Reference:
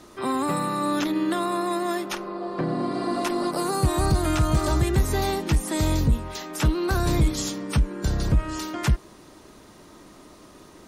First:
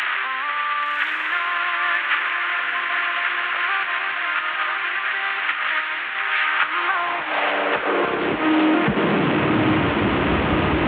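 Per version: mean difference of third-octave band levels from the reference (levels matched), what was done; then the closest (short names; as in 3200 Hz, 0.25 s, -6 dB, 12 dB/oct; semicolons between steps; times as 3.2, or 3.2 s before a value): 18.5 dB: delta modulation 16 kbps, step -24 dBFS; limiter -21 dBFS, peak gain reduction 8.5 dB; high-pass sweep 1600 Hz -> 68 Hz, 6.41–10.31; diffused feedback echo 1.123 s, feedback 44%, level -4.5 dB; gain +8.5 dB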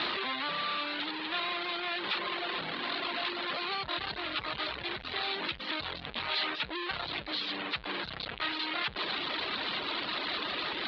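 13.0 dB: infinite clipping; reverb removal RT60 0.91 s; steep low-pass 4200 Hz 72 dB/oct; tilt +4.5 dB/oct; gain -7 dB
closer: second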